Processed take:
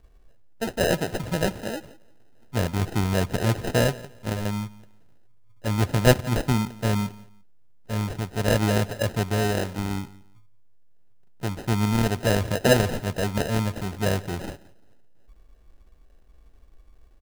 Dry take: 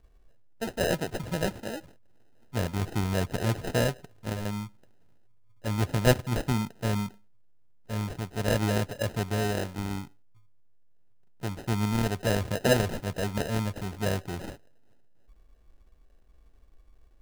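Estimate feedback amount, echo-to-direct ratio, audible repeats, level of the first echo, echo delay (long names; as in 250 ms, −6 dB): 24%, −20.5 dB, 2, −20.5 dB, 173 ms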